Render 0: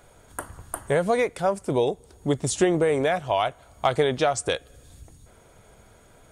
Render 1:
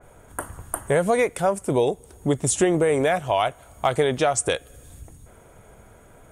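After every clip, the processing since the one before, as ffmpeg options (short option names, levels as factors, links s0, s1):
-filter_complex "[0:a]equalizer=f=4500:w=1.2:g=-12,asplit=2[s0][s1];[s1]alimiter=limit=0.141:level=0:latency=1:release=366,volume=1.41[s2];[s0][s2]amix=inputs=2:normalize=0,adynamicequalizer=threshold=0.0141:dfrequency=2500:dqfactor=0.7:tfrequency=2500:tqfactor=0.7:attack=5:release=100:ratio=0.375:range=4:mode=boostabove:tftype=highshelf,volume=0.668"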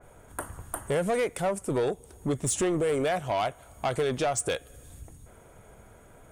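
-af "asoftclip=type=tanh:threshold=0.126,volume=0.708"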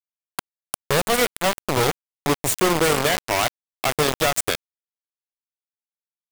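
-filter_complex "[0:a]aecho=1:1:73:0.15,acrossover=split=360|2500[s0][s1][s2];[s1]acompressor=mode=upward:threshold=0.0178:ratio=2.5[s3];[s0][s3][s2]amix=inputs=3:normalize=0,acrusher=bits=3:mix=0:aa=0.000001,volume=1.78"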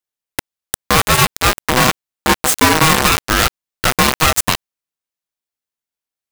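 -af "aeval=exprs='val(0)*sgn(sin(2*PI*630*n/s))':c=same,volume=2.24"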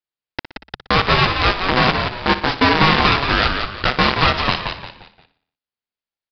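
-filter_complex "[0:a]asplit=2[s0][s1];[s1]aecho=0:1:60|120|180|240|300:0.224|0.116|0.0605|0.0315|0.0164[s2];[s0][s2]amix=inputs=2:normalize=0,aresample=11025,aresample=44100,asplit=2[s3][s4];[s4]asplit=4[s5][s6][s7][s8];[s5]adelay=175,afreqshift=-70,volume=0.501[s9];[s6]adelay=350,afreqshift=-140,volume=0.176[s10];[s7]adelay=525,afreqshift=-210,volume=0.0617[s11];[s8]adelay=700,afreqshift=-280,volume=0.0214[s12];[s9][s10][s11][s12]amix=inputs=4:normalize=0[s13];[s3][s13]amix=inputs=2:normalize=0,volume=0.75"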